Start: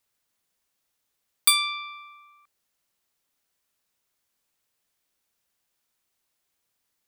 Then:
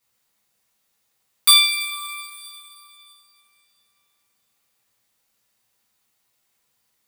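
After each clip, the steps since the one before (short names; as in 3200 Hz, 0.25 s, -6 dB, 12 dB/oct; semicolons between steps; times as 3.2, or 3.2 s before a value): two-slope reverb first 0.34 s, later 3 s, from -17 dB, DRR -7 dB; gain -1 dB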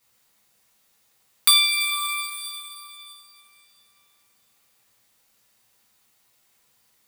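compressor 2:1, threshold -27 dBFS, peak gain reduction 10 dB; gain +6 dB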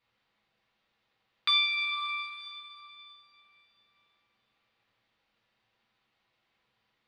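LPF 3700 Hz 24 dB/oct; gain -5 dB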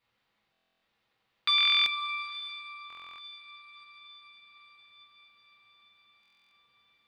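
diffused feedback echo 0.918 s, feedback 54%, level -15 dB; stuck buffer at 0.52/1.56/2.88/6.21, samples 1024, times 12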